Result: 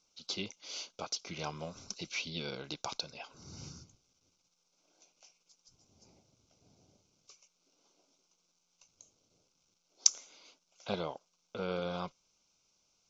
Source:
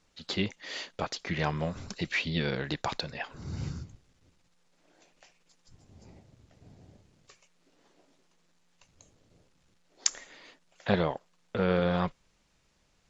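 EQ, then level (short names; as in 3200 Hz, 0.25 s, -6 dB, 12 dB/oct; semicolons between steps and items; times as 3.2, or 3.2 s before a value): Butterworth band-stop 1800 Hz, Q 2.9; synth low-pass 5900 Hz, resonance Q 5.3; low shelf 140 Hz -11.5 dB; -8.0 dB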